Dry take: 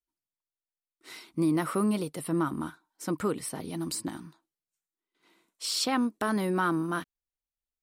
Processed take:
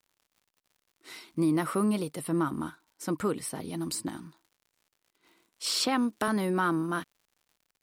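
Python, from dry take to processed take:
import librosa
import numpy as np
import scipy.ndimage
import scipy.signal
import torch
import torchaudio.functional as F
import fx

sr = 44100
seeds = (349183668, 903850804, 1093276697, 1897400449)

y = fx.dmg_crackle(x, sr, seeds[0], per_s=120.0, level_db=-53.0)
y = fx.band_squash(y, sr, depth_pct=40, at=(5.66, 6.28))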